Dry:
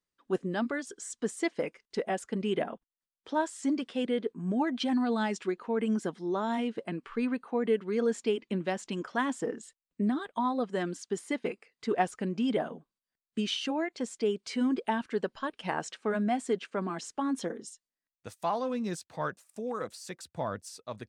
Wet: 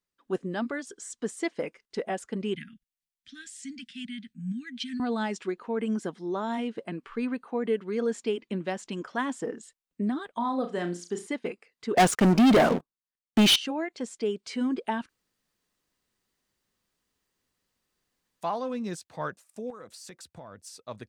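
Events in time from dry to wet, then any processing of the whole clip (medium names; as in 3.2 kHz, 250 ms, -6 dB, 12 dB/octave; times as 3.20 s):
2.55–5.00 s: inverse Chebyshev band-stop 400–1000 Hz, stop band 50 dB
10.37–11.27 s: flutter echo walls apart 5.9 m, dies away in 0.27 s
11.97–13.56 s: waveshaping leveller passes 5
15.09–18.41 s: room tone
19.70–20.66 s: compression, threshold -41 dBFS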